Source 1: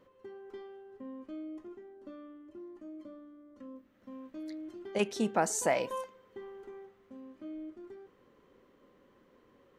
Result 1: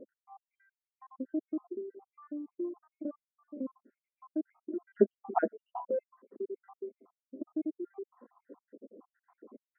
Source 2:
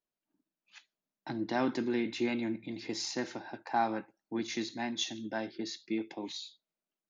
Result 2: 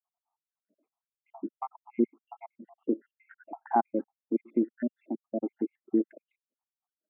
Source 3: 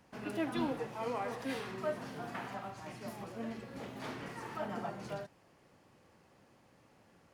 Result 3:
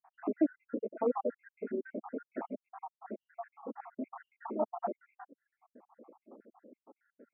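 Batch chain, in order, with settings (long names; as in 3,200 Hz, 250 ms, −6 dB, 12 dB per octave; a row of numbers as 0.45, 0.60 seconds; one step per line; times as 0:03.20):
time-frequency cells dropped at random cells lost 78%
linear-phase brick-wall high-pass 210 Hz
reverb reduction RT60 1.1 s
Gaussian smoothing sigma 7.3 samples
low-shelf EQ 460 Hz +5.5 dB
in parallel at 0 dB: downward compressor, threshold −52 dBFS
on the sum: level +7 dB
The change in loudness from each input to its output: 0.0, +3.0, +2.0 LU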